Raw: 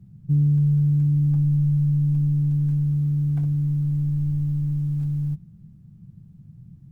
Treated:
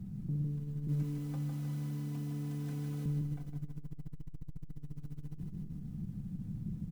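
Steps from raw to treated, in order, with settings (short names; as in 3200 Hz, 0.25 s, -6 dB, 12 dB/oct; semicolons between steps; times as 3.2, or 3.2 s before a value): 0.87–3.06 HPF 270 Hz 12 dB/oct; comb 4 ms, depth 57%; limiter -36 dBFS, peak gain reduction 18.5 dB; feedback echo 0.155 s, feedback 58%, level -4 dB; core saturation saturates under 81 Hz; gain +6.5 dB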